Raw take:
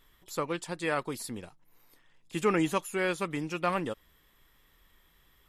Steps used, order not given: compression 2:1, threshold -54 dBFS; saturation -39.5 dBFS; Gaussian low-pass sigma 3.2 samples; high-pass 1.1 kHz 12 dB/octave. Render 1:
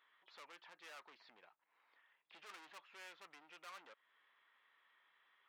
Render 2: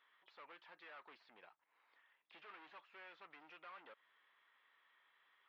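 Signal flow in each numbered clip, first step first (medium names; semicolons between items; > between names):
Gaussian low-pass > saturation > compression > high-pass; saturation > high-pass > compression > Gaussian low-pass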